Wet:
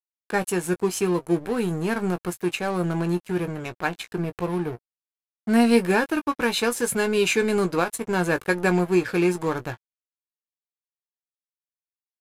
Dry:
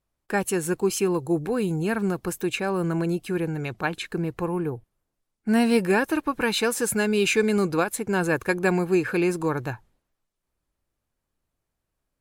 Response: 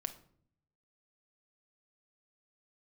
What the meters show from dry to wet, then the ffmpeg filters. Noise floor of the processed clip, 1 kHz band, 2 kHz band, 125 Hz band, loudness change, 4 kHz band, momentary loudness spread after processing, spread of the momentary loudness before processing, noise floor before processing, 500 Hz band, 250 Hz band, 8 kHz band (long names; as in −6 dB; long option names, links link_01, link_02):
below −85 dBFS, +1.5 dB, +0.5 dB, +0.5 dB, +0.5 dB, +0.5 dB, 9 LU, 8 LU, −82 dBFS, +0.5 dB, +0.5 dB, −0.5 dB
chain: -filter_complex "[0:a]aeval=exprs='sgn(val(0))*max(abs(val(0))-0.0158,0)':channel_layout=same,asplit=2[link_01][link_02];[link_02]adelay=17,volume=-9dB[link_03];[link_01][link_03]amix=inputs=2:normalize=0,aresample=32000,aresample=44100,volume=1.5dB"